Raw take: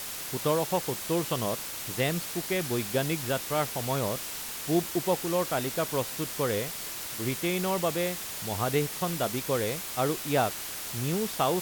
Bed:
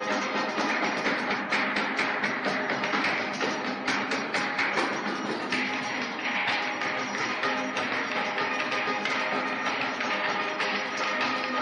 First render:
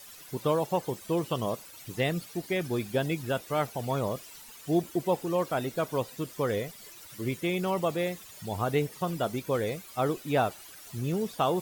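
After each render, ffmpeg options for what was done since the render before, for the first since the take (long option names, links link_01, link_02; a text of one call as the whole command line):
ffmpeg -i in.wav -af "afftdn=noise_reduction=15:noise_floor=-37" out.wav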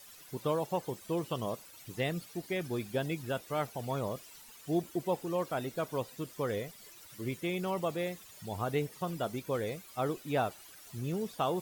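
ffmpeg -i in.wav -af "volume=-5dB" out.wav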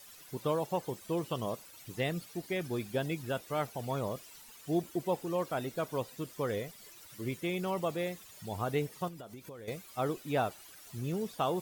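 ffmpeg -i in.wav -filter_complex "[0:a]asettb=1/sr,asplit=3[link_01][link_02][link_03];[link_01]atrim=end=9.084[link_04];[link_02]atrim=start=9.08:end=9.68,asetpts=PTS-STARTPTS,afade=type=in:duration=0.004:curve=qsin,afade=type=out:start_time=0.596:duration=0.004:curve=qsin,acompressor=threshold=-43dB:ratio=10:attack=3.2:release=140:knee=1:detection=peak[link_05];[link_03]atrim=start=9.676[link_06];[link_04][link_05]acrossfade=duration=0.004:curve1=hsin:curve2=qsin[link_07];[link_07][link_06]acrossfade=duration=0.004:curve1=qsin:curve2=hsin" out.wav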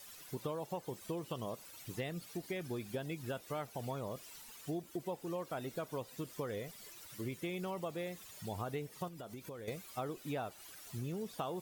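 ffmpeg -i in.wav -af "acompressor=threshold=-37dB:ratio=5" out.wav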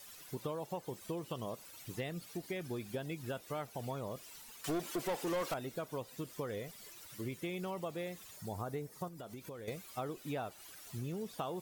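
ffmpeg -i in.wav -filter_complex "[0:a]asettb=1/sr,asplit=3[link_01][link_02][link_03];[link_01]atrim=end=4.644[link_04];[link_02]atrim=start=4.64:end=5.54,asetpts=PTS-STARTPTS,afade=type=in:duration=0.004:curve=qsin,afade=type=out:start_time=0.896:duration=0.004:curve=qsin,asplit=2[link_05][link_06];[link_06]highpass=frequency=720:poles=1,volume=22dB,asoftclip=type=tanh:threshold=-28dB[link_07];[link_05][link_07]amix=inputs=2:normalize=0,lowpass=frequency=8000:poles=1,volume=-6dB[link_08];[link_03]atrim=start=5.536[link_09];[link_04][link_08]acrossfade=duration=0.004:curve1=hsin:curve2=qsin[link_10];[link_10][link_09]acrossfade=duration=0.004:curve1=qsin:curve2=hsin,asettb=1/sr,asplit=3[link_11][link_12][link_13];[link_11]atrim=end=8.364[link_14];[link_12]atrim=start=8.36:end=9.2,asetpts=PTS-STARTPTS,afade=type=in:duration=0.004:curve=qsin,afade=type=out:start_time=0.836:duration=0.004:curve=qsin,equalizer=frequency=2900:width_type=o:width=0.84:gain=-9.5[link_15];[link_13]atrim=start=9.196[link_16];[link_14][link_15]acrossfade=duration=0.004:curve1=hsin:curve2=qsin[link_17];[link_17][link_16]acrossfade=duration=0.004:curve1=qsin:curve2=hsin" out.wav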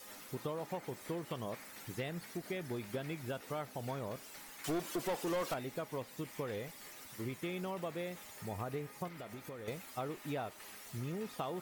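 ffmpeg -i in.wav -i bed.wav -filter_complex "[1:a]volume=-28.5dB[link_01];[0:a][link_01]amix=inputs=2:normalize=0" out.wav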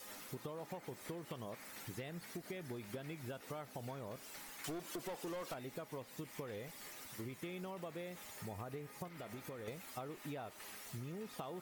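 ffmpeg -i in.wav -af "acompressor=threshold=-43dB:ratio=4" out.wav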